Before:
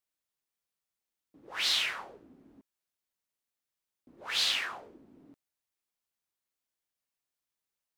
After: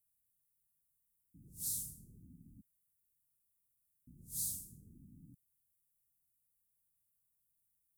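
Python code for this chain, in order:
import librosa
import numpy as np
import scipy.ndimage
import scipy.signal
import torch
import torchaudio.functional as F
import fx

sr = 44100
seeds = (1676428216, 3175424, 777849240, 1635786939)

y = scipy.signal.sosfilt(scipy.signal.cheby2(4, 80, [730.0, 2500.0], 'bandstop', fs=sr, output='sos'), x)
y = y * librosa.db_to_amplitude(10.5)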